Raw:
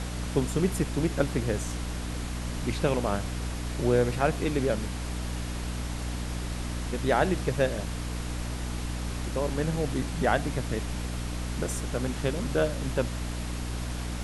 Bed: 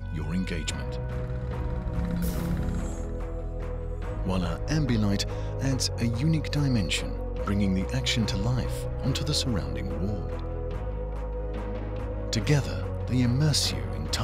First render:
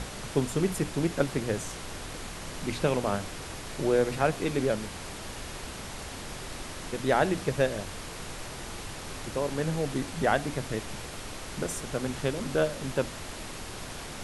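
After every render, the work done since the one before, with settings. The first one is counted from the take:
mains-hum notches 60/120/180/240/300 Hz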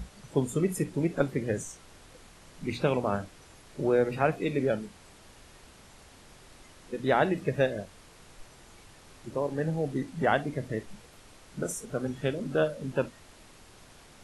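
noise reduction from a noise print 14 dB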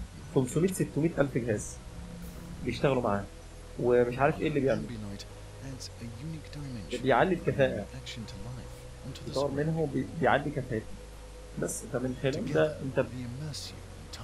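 mix in bed −15 dB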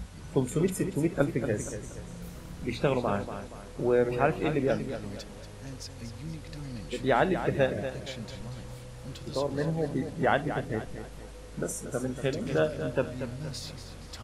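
repeating echo 236 ms, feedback 40%, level −10 dB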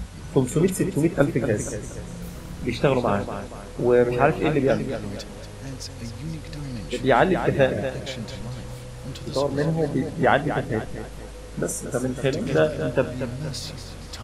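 level +6.5 dB

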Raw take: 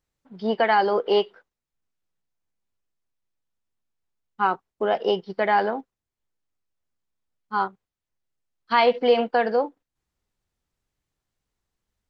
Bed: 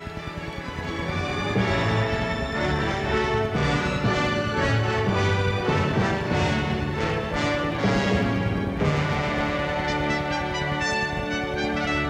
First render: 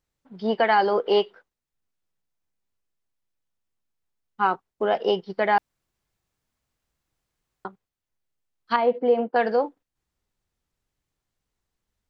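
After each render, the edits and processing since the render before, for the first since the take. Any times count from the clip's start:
0:05.58–0:07.65: fill with room tone
0:08.76–0:09.36: resonant band-pass 300 Hz, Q 0.63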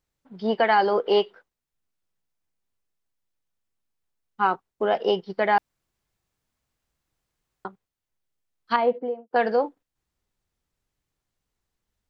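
0:08.79–0:09.31: fade out and dull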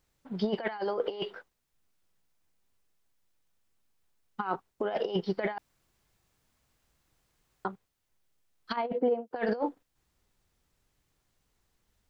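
compressor whose output falls as the input rises −27 dBFS, ratio −0.5
brickwall limiter −19 dBFS, peak gain reduction 7.5 dB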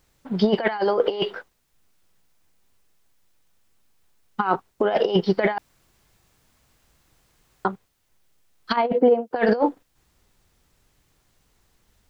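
level +10.5 dB

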